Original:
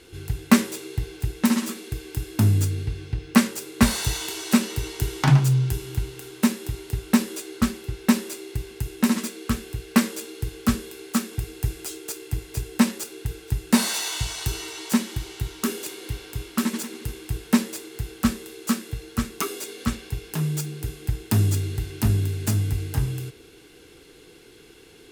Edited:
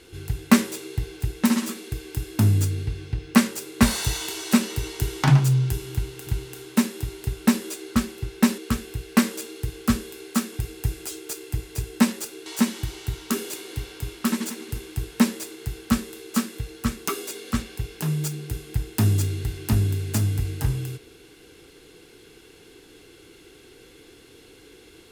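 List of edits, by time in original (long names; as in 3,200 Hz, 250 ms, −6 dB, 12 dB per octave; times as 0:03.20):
0:05.93–0:06.27: repeat, 2 plays
0:08.24–0:09.37: remove
0:13.25–0:14.79: remove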